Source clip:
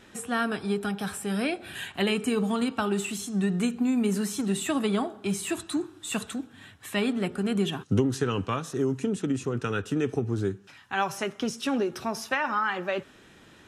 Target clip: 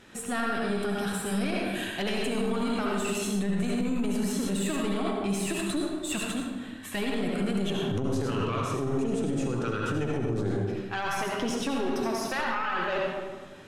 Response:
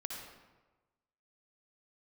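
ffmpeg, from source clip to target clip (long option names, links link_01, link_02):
-filter_complex "[0:a]aeval=exprs='0.335*(cos(1*acos(clip(val(0)/0.335,-1,1)))-cos(1*PI/2))+0.0668*(cos(4*acos(clip(val(0)/0.335,-1,1)))-cos(4*PI/2))':channel_layout=same[link_01];[1:a]atrim=start_sample=2205,asetrate=37485,aresample=44100[link_02];[link_01][link_02]afir=irnorm=-1:irlink=0,alimiter=limit=-22dB:level=0:latency=1:release=42,volume=2dB"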